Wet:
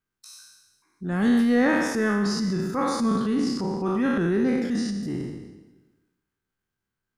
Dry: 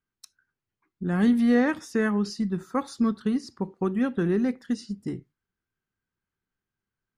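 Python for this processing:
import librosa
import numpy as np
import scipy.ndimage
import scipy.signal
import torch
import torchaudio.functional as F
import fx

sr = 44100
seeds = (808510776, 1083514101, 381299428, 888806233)

p1 = fx.spec_trails(x, sr, decay_s=1.0)
p2 = fx.transient(p1, sr, attack_db=-5, sustain_db=7)
y = p2 + fx.echo_feedback(p2, sr, ms=214, feedback_pct=48, wet_db=-22.0, dry=0)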